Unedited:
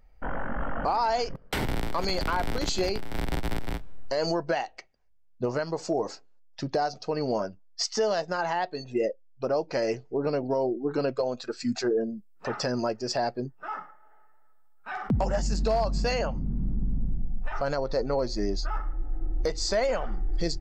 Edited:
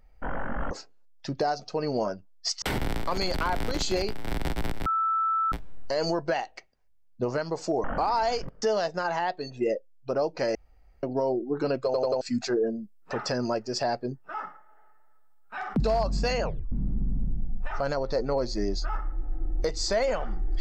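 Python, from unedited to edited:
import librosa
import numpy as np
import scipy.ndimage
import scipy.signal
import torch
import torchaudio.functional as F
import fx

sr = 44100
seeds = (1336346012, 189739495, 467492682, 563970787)

y = fx.edit(x, sr, fx.swap(start_s=0.71, length_s=0.78, other_s=6.05, other_length_s=1.91),
    fx.insert_tone(at_s=3.73, length_s=0.66, hz=1320.0, db=-22.5),
    fx.room_tone_fill(start_s=9.89, length_s=0.48),
    fx.stutter_over(start_s=11.19, slice_s=0.09, count=4),
    fx.cut(start_s=15.14, length_s=0.47),
    fx.tape_stop(start_s=16.25, length_s=0.28), tone=tone)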